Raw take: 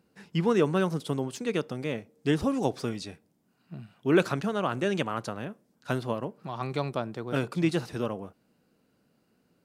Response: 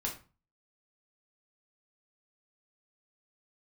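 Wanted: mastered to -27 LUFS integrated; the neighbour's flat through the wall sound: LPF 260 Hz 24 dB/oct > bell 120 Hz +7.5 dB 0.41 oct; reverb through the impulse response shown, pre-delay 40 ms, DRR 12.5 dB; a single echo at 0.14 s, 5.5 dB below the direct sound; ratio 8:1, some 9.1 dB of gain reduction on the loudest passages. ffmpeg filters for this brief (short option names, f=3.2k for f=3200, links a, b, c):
-filter_complex "[0:a]acompressor=threshold=-27dB:ratio=8,aecho=1:1:140:0.531,asplit=2[a][b];[1:a]atrim=start_sample=2205,adelay=40[c];[b][c]afir=irnorm=-1:irlink=0,volume=-15.5dB[d];[a][d]amix=inputs=2:normalize=0,lowpass=f=260:w=0.5412,lowpass=f=260:w=1.3066,equalizer=f=120:t=o:w=0.41:g=7.5,volume=8.5dB"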